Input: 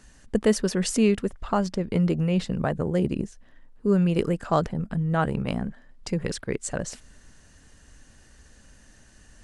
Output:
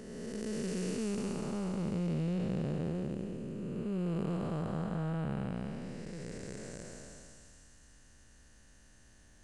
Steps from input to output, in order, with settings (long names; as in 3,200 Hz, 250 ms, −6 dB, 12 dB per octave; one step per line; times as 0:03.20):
spectrum smeared in time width 767 ms
delay with a high-pass on its return 246 ms, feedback 59%, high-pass 4,800 Hz, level −5 dB
level −6 dB